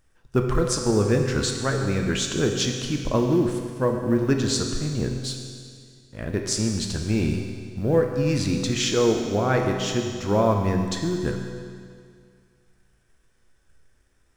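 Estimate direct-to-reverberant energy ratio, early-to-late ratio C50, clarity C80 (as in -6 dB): 2.5 dB, 4.0 dB, 5.0 dB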